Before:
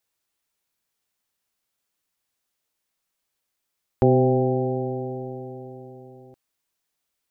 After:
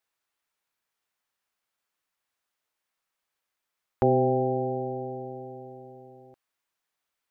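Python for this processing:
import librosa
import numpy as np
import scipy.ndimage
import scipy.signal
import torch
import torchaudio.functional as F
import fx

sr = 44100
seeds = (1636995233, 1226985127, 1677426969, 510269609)

y = fx.peak_eq(x, sr, hz=1300.0, db=9.0, octaves=2.7)
y = y * 10.0 ** (-7.5 / 20.0)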